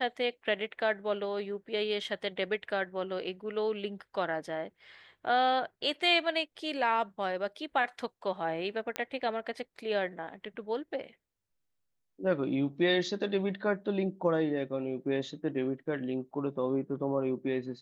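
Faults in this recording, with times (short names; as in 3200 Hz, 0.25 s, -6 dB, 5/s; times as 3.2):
8.96 pop -16 dBFS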